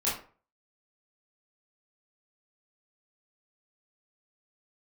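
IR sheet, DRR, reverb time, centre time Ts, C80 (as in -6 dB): -9.0 dB, 0.40 s, 39 ms, 10.5 dB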